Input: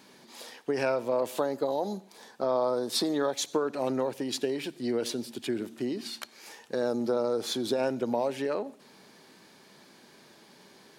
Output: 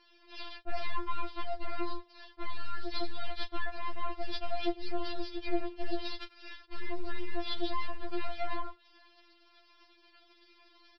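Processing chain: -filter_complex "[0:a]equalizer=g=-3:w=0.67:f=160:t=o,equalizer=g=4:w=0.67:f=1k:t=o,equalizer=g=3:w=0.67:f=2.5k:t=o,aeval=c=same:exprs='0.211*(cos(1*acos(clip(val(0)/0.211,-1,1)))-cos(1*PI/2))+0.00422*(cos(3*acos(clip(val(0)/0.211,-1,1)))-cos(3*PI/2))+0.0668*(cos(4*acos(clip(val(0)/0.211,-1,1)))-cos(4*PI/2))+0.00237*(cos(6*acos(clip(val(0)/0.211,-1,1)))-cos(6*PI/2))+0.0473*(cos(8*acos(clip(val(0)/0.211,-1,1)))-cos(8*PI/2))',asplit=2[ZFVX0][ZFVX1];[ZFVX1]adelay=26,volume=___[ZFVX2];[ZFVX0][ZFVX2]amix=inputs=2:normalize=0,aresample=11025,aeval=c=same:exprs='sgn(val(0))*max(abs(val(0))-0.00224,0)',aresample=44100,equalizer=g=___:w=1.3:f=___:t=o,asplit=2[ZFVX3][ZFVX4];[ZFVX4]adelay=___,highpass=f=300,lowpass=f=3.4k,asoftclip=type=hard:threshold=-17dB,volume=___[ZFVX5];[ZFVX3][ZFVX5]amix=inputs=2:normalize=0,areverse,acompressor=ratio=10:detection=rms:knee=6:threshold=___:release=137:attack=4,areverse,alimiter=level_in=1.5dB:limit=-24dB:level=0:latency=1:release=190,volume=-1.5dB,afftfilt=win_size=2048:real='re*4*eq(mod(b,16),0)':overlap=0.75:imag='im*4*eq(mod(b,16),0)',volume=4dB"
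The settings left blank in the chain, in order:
-14dB, 3, 3.8k, 100, -25dB, -28dB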